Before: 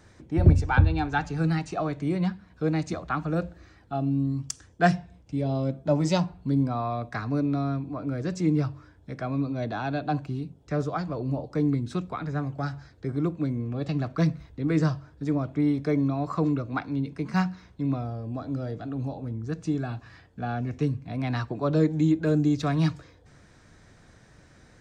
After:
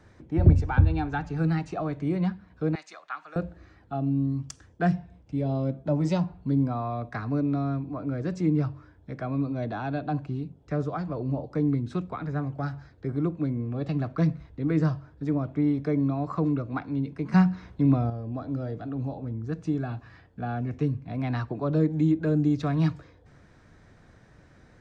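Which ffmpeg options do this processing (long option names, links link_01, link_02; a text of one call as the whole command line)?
ffmpeg -i in.wav -filter_complex "[0:a]asettb=1/sr,asplit=3[link_01][link_02][link_03];[link_01]atrim=end=2.754[link_04];[link_02]atrim=start=2.75:end=3.36,asetpts=PTS-STARTPTS,afade=type=in:duration=0.004:curve=qsin,afade=type=out:start_time=0.606:duration=0.004:curve=qsin,highpass=1300[link_05];[link_03]atrim=start=3.356[link_06];[link_04][link_05]acrossfade=duration=0.004:curve1=hsin:curve2=qsin[link_07];[link_07][link_06]acrossfade=duration=0.004:curve1=qsin:curve2=hsin,asettb=1/sr,asplit=3[link_08][link_09][link_10];[link_08]atrim=end=17.324[link_11];[link_09]atrim=start=17.32:end=18.1,asetpts=PTS-STARTPTS,afade=type=in:duration=0.004:curve=qsin,afade=type=out:start_time=0.776:duration=0.004:curve=qsin,acontrast=68[link_12];[link_10]atrim=start=18.096[link_13];[link_11][link_12]acrossfade=duration=0.004:curve1=hsin:curve2=qsin[link_14];[link_14][link_13]acrossfade=duration=0.004:curve1=qsin:curve2=hsin,highshelf=frequency=4200:gain=-12,acrossover=split=350[link_15][link_16];[link_16]acompressor=threshold=-31dB:ratio=2[link_17];[link_15][link_17]amix=inputs=2:normalize=0" out.wav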